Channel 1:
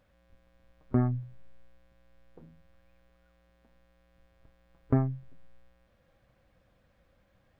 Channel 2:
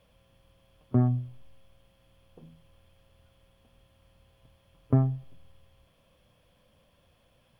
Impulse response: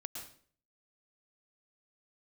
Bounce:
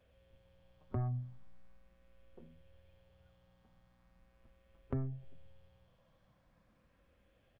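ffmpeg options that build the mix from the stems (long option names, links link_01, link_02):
-filter_complex "[0:a]volume=-6.5dB[link_01];[1:a]aemphasis=mode=reproduction:type=75fm,asplit=2[link_02][link_03];[link_03]afreqshift=0.4[link_04];[link_02][link_04]amix=inputs=2:normalize=1,adelay=4.4,volume=-5dB[link_05];[link_01][link_05]amix=inputs=2:normalize=0,acrossover=split=120[link_06][link_07];[link_07]acompressor=threshold=-39dB:ratio=5[link_08];[link_06][link_08]amix=inputs=2:normalize=0"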